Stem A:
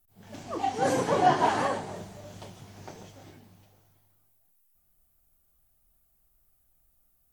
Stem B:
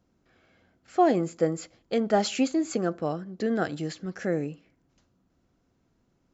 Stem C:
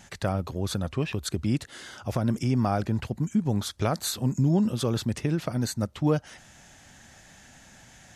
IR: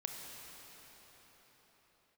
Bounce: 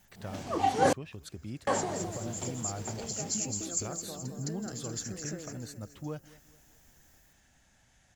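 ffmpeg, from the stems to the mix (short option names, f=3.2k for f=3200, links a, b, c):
-filter_complex "[0:a]volume=2dB,asplit=3[a][b][c];[a]atrim=end=0.93,asetpts=PTS-STARTPTS,afade=t=out:st=0.926:d=0.004:c=hsin[d];[b]atrim=start=0.93:end=1.67,asetpts=PTS-STARTPTS,volume=0[e];[c]atrim=start=1.67,asetpts=PTS-STARTPTS,afade=t=in:d=0.004:c=hsin[f];[d][e][f]concat=n=3:v=0:a=1[g];[1:a]acompressor=threshold=-35dB:ratio=5,aexciter=amount=8.3:drive=8.5:freq=5.2k,adelay=850,volume=-2dB,asplit=2[h][i];[i]volume=-5dB[j];[2:a]asubboost=boost=2:cutoff=99,volume=-14.5dB,asplit=3[k][l][m];[l]volume=-21dB[n];[m]apad=whole_len=316960[o];[h][o]sidechaincompress=threshold=-52dB:ratio=8:attack=16:release=157[p];[j][n]amix=inputs=2:normalize=0,aecho=0:1:213|426|639|852|1065|1278:1|0.44|0.194|0.0852|0.0375|0.0165[q];[g][p][k][q]amix=inputs=4:normalize=0"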